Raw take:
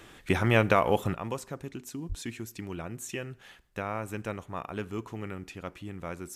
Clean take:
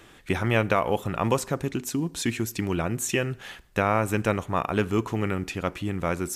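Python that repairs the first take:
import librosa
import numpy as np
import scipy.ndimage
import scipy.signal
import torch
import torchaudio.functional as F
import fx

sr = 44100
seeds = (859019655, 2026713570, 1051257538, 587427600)

y = fx.fix_deplosive(x, sr, at_s=(2.08,))
y = fx.gain(y, sr, db=fx.steps((0.0, 0.0), (1.14, 11.0)))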